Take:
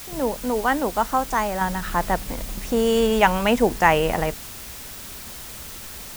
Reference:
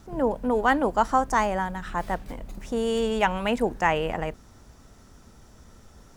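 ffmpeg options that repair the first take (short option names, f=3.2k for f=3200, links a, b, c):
-af "afwtdn=0.013,asetnsamples=n=441:p=0,asendcmd='1.61 volume volume -6dB',volume=0dB"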